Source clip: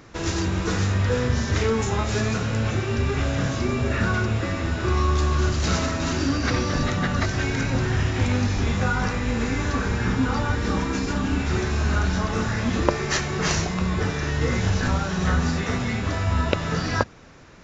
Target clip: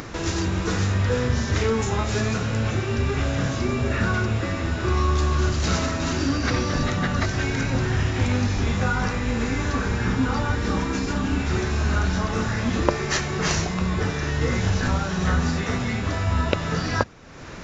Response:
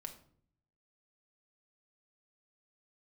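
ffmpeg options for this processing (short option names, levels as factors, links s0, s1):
-af "acompressor=mode=upward:threshold=0.0501:ratio=2.5"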